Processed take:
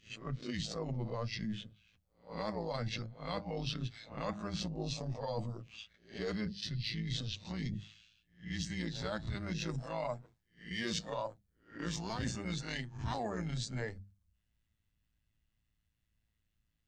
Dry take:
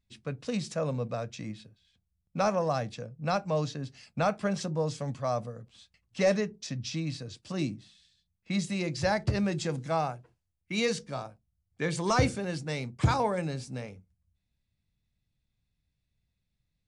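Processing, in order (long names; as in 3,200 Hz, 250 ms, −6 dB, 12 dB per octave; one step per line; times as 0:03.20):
peak hold with a rise ahead of every peak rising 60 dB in 0.31 s
dynamic equaliser 570 Hz, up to −5 dB, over −39 dBFS, Q 0.81
in parallel at −8 dB: soft clipping −29.5 dBFS, distortion −8 dB
on the sum: noise reduction from a noise print of the clip's start 9 dB
amplitude modulation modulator 110 Hz, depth 60%
formants moved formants −4 semitones
reversed playback
downward compressor 12 to 1, threshold −42 dBFS, peak gain reduction 22 dB
reversed playback
mains-hum notches 50/100/150/200 Hz
level +8 dB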